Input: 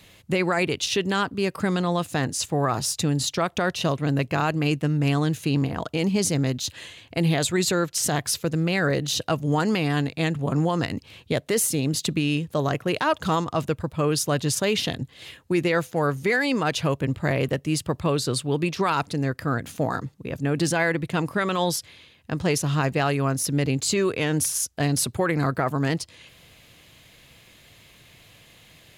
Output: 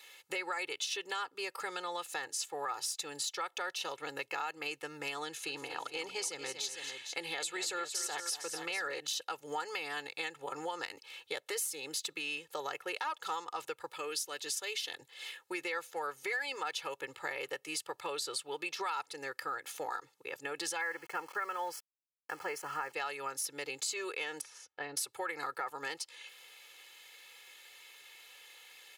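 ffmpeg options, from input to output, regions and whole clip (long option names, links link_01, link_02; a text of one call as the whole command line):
ffmpeg -i in.wav -filter_complex "[0:a]asettb=1/sr,asplit=3[link_01][link_02][link_03];[link_01]atrim=end=5.254[link_04];[link_02]atrim=start=5.25:end=9,asetpts=PTS-STARTPTS,afade=type=in:duration=0.004:curve=qsin,afade=type=out:start_time=3.746:duration=0.004:curve=qsin,lowpass=11000,aecho=1:1:232|453:0.237|0.266,atrim=end_sample=165375[link_05];[link_03]atrim=start=8.996[link_06];[link_04][link_05]acrossfade=duration=0.004:curve1=hsin:curve2=qsin[link_07];[link_07][link_06]acrossfade=duration=0.004:curve1=qsin:curve2=hsin,asettb=1/sr,asplit=3[link_08][link_09][link_10];[link_08]atrim=end=13.934[link_11];[link_09]atrim=start=13.93:end=14.91,asetpts=PTS-STARTPTS,afade=type=in:duration=0.004:curve=qsin,afade=type=out:start_time=0.976:duration=0.004:curve=qsin,highpass=200,equalizer=frequency=870:width_type=o:width=2:gain=-7.5,acompressor=mode=upward:threshold=-31dB:ratio=2.5:attack=3.2:release=140:knee=2.83:detection=peak[link_12];[link_10]atrim=start=14.906[link_13];[link_11][link_12]acrossfade=duration=0.004:curve1=hsin:curve2=qsin[link_14];[link_14][link_13]acrossfade=duration=0.004:curve1=qsin:curve2=hsin,asettb=1/sr,asplit=3[link_15][link_16][link_17];[link_15]atrim=end=20.814[link_18];[link_16]atrim=start=20.81:end=22.92,asetpts=PTS-STARTPTS,afade=type=in:duration=0.004:curve=qsin,afade=type=out:start_time=2.106:duration=0.004:curve=qsin,highshelf=frequency=2400:width_type=q:width=1.5:gain=-10,aeval=exprs='val(0)*gte(abs(val(0)),0.0119)':channel_layout=same,asuperstop=centerf=3700:order=8:qfactor=6.9[link_19];[link_17]atrim=start=22.916[link_20];[link_18][link_19]acrossfade=duration=0.004:curve1=hsin:curve2=qsin[link_21];[link_21][link_20]acrossfade=duration=0.004:curve1=qsin:curve2=hsin,asettb=1/sr,asplit=3[link_22][link_23][link_24];[link_22]atrim=end=24.414[link_25];[link_23]atrim=start=24.41:end=24.97,asetpts=PTS-STARTPTS,afade=type=in:duration=0.004:curve=qsin,afade=type=out:start_time=0.556:duration=0.004:curve=qsin,lowpass=1800,equalizer=frequency=890:width_type=o:width=2.4:gain=-4[link_26];[link_24]atrim=start=24.966[link_27];[link_25][link_26]acrossfade=duration=0.004:curve1=hsin:curve2=qsin[link_28];[link_28][link_27]acrossfade=duration=0.004:curve1=qsin:curve2=hsin,highpass=790,aecho=1:1:2.3:0.93,acompressor=threshold=-32dB:ratio=3,volume=-4.5dB" out.wav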